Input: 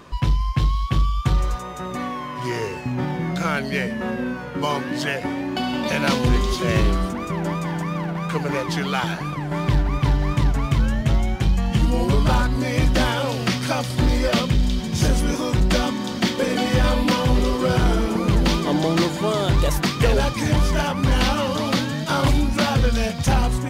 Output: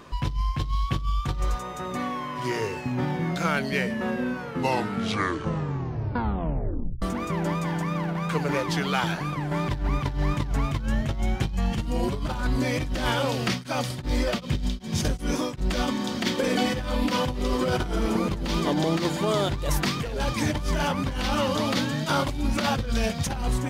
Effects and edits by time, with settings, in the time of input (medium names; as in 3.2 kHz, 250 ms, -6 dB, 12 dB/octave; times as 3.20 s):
4.40 s: tape stop 2.62 s
13.45–15.88 s: tremolo of two beating tones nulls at 2.6 Hz
whole clip: hum notches 60/120/180 Hz; compressor with a negative ratio -20 dBFS, ratio -0.5; trim -3.5 dB